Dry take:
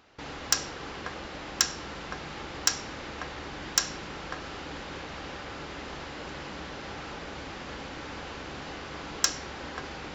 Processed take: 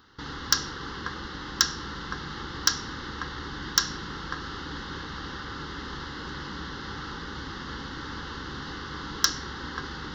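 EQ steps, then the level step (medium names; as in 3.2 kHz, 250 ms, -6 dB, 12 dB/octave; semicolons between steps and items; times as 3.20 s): static phaser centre 2.4 kHz, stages 6; +5.5 dB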